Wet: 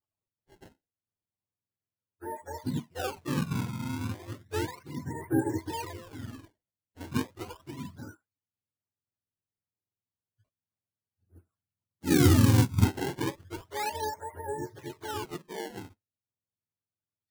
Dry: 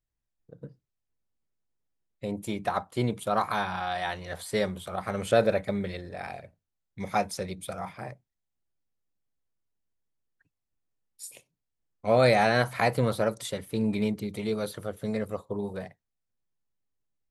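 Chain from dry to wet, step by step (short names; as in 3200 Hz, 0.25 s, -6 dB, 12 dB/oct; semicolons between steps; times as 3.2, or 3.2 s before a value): spectrum mirrored in octaves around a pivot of 430 Hz; decimation with a swept rate 21×, swing 160% 0.33 Hz; 11.26–12.85 tone controls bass +8 dB, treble +7 dB; gain -4 dB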